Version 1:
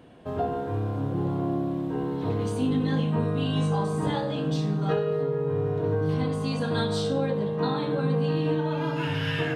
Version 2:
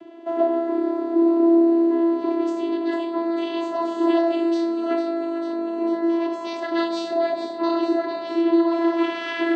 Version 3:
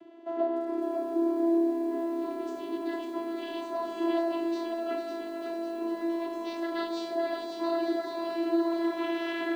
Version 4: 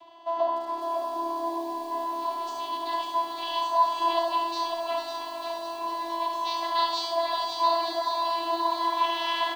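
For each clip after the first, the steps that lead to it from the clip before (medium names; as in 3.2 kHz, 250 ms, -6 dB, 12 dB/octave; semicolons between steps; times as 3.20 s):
in parallel at +0.5 dB: gain riding within 4 dB; on the sum: vocoder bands 16, saw 335 Hz; feedback echo behind a high-pass 448 ms, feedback 70%, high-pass 1.6 kHz, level -9 dB
bit-crushed delay 551 ms, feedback 55%, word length 8-bit, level -5 dB; trim -8.5 dB
FFT filter 110 Hz 0 dB, 160 Hz -14 dB, 380 Hz -17 dB, 1 kHz +14 dB, 1.4 kHz -8 dB, 4 kHz +11 dB, 7.4 kHz +4 dB; delay 71 ms -6 dB; trim +3.5 dB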